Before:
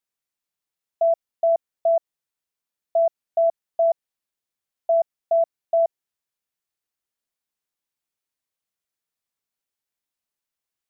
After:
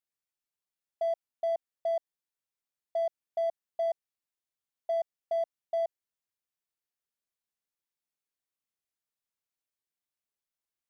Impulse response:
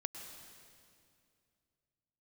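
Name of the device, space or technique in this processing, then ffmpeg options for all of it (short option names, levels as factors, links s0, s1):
clipper into limiter: -af "asoftclip=type=hard:threshold=0.178,alimiter=limit=0.119:level=0:latency=1:release=34,volume=0.447"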